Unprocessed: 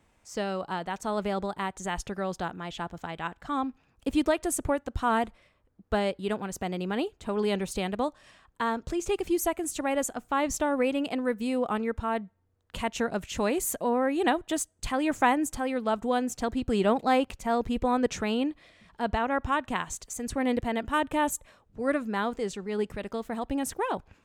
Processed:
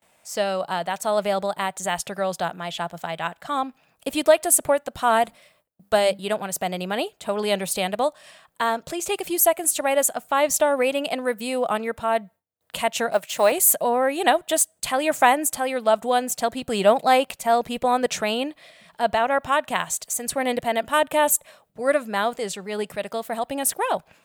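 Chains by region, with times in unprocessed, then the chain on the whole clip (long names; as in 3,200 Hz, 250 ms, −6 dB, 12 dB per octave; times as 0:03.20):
0:05.25–0:06.19: bass and treble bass +2 dB, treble +5 dB + mains-hum notches 50/100/150/200/250/300 Hz
0:13.12–0:13.52: mu-law and A-law mismatch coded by A + high-pass filter 320 Hz 6 dB per octave + dynamic equaliser 780 Hz, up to +5 dB, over −43 dBFS, Q 0.72
whole clip: spectral tilt +4 dB per octave; noise gate with hold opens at −55 dBFS; graphic EQ with 15 bands 160 Hz +11 dB, 630 Hz +11 dB, 6,300 Hz −6 dB; level +3 dB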